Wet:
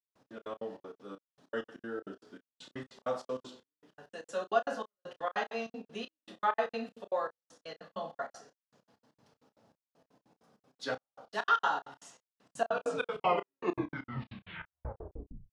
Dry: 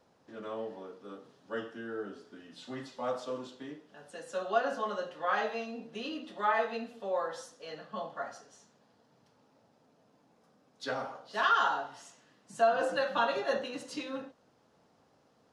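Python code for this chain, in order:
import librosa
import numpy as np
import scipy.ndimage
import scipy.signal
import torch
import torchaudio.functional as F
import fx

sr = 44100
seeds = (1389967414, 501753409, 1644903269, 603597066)

y = fx.tape_stop_end(x, sr, length_s=2.9)
y = fx.step_gate(y, sr, bpm=196, pattern='..x.x.x.xx.x.xx.', floor_db=-60.0, edge_ms=4.5)
y = fx.doubler(y, sr, ms=31.0, db=-12.5)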